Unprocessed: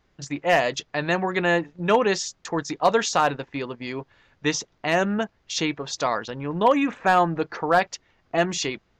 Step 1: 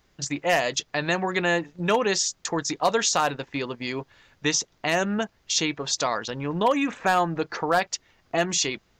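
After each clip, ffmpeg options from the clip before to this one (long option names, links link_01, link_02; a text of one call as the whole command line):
ffmpeg -i in.wav -filter_complex "[0:a]highshelf=frequency=4700:gain=12,asplit=2[link_01][link_02];[link_02]acompressor=threshold=-25dB:ratio=6,volume=2.5dB[link_03];[link_01][link_03]amix=inputs=2:normalize=0,volume=-6.5dB" out.wav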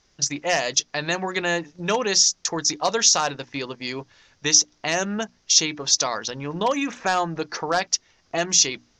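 ffmpeg -i in.wav -af "lowpass=frequency=5800:width_type=q:width=4,bandreject=frequency=60:width_type=h:width=6,bandreject=frequency=120:width_type=h:width=6,bandreject=frequency=180:width_type=h:width=6,bandreject=frequency=240:width_type=h:width=6,bandreject=frequency=300:width_type=h:width=6,volume=-1dB" out.wav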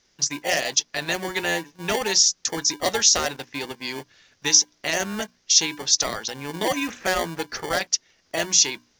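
ffmpeg -i in.wav -filter_complex "[0:a]lowshelf=frequency=140:gain=-9.5,acrossover=split=1000[link_01][link_02];[link_01]acrusher=samples=34:mix=1:aa=0.000001[link_03];[link_03][link_02]amix=inputs=2:normalize=0" out.wav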